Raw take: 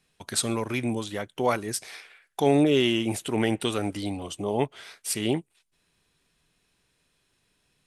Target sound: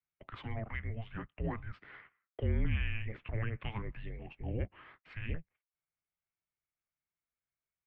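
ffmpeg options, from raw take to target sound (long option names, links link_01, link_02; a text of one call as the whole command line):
ffmpeg -i in.wav -filter_complex "[0:a]agate=range=-17dB:threshold=-48dB:ratio=16:detection=peak,highpass=frequency=190:width_type=q:width=0.5412,highpass=frequency=190:width_type=q:width=1.307,lowpass=frequency=2700:width_type=q:width=0.5176,lowpass=frequency=2700:width_type=q:width=0.7071,lowpass=frequency=2700:width_type=q:width=1.932,afreqshift=-330,acrossover=split=160[link_01][link_02];[link_02]alimiter=limit=-22.5dB:level=0:latency=1:release=125[link_03];[link_01][link_03]amix=inputs=2:normalize=0,aemphasis=mode=production:type=50fm,volume=-8.5dB" out.wav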